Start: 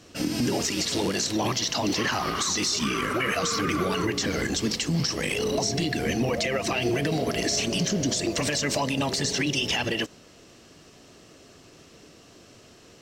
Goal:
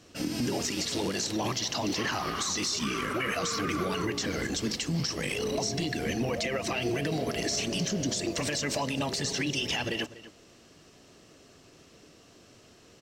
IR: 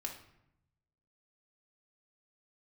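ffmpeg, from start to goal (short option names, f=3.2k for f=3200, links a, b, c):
-filter_complex "[0:a]asplit=2[a][b];[b]adelay=244.9,volume=-16dB,highshelf=f=4k:g=-5.51[c];[a][c]amix=inputs=2:normalize=0,volume=-4.5dB"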